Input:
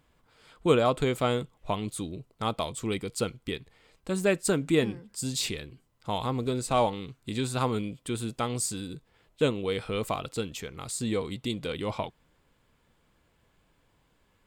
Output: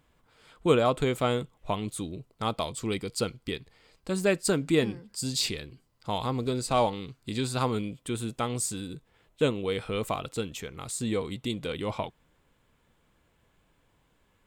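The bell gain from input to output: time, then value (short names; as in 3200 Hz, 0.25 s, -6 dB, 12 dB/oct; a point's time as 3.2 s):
bell 4700 Hz 0.27 oct
1.98 s -2 dB
2.81 s +6.5 dB
7.57 s +6.5 dB
8.1 s -4 dB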